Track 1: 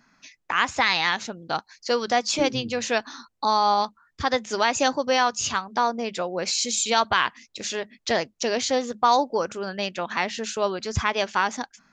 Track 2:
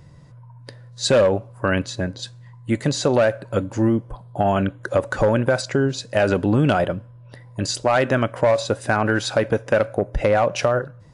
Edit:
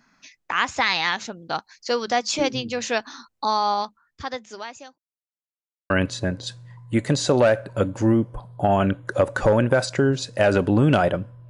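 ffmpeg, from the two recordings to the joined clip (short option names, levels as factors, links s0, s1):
-filter_complex "[0:a]apad=whole_dur=11.49,atrim=end=11.49,asplit=2[s0][s1];[s0]atrim=end=4.98,asetpts=PTS-STARTPTS,afade=t=out:st=3.41:d=1.57[s2];[s1]atrim=start=4.98:end=5.9,asetpts=PTS-STARTPTS,volume=0[s3];[1:a]atrim=start=1.66:end=7.25,asetpts=PTS-STARTPTS,afade=t=in:d=0.004:c=hsin[s4];[s2][s3][s4]concat=n=3:v=0:a=1"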